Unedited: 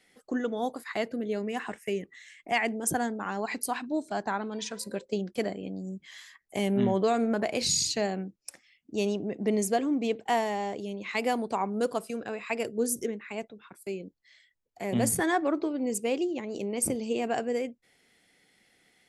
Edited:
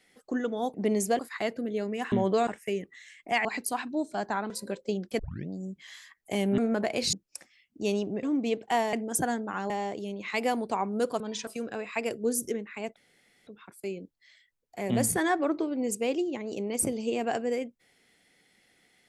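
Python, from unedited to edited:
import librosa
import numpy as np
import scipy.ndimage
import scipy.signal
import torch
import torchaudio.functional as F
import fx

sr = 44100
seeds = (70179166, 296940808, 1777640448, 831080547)

y = fx.edit(x, sr, fx.move(start_s=2.65, length_s=0.77, to_s=10.51),
    fx.move(start_s=4.47, length_s=0.27, to_s=12.01),
    fx.tape_start(start_s=5.43, length_s=0.31),
    fx.move(start_s=6.82, length_s=0.35, to_s=1.67),
    fx.cut(start_s=7.72, length_s=0.54),
    fx.move(start_s=9.36, length_s=0.45, to_s=0.74),
    fx.insert_room_tone(at_s=13.5, length_s=0.51), tone=tone)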